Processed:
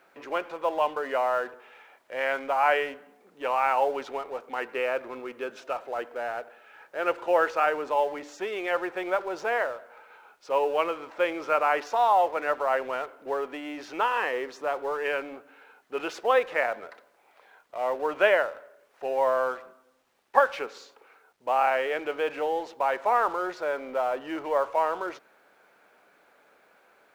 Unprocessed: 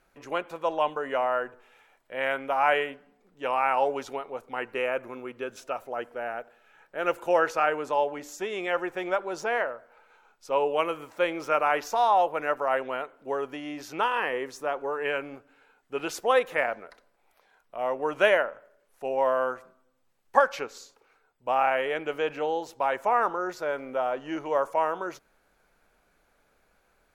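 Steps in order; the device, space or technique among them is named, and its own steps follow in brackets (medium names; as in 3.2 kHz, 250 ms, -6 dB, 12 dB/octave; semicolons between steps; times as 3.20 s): phone line with mismatched companding (band-pass 310–3300 Hz; companding laws mixed up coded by mu)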